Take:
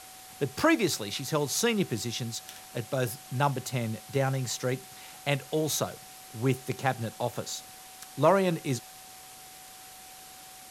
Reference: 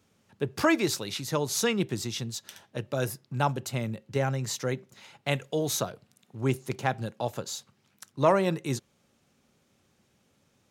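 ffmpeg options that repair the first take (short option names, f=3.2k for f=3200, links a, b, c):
-af "adeclick=t=4,bandreject=f=750:w=30,afftdn=nr=20:nf=-48"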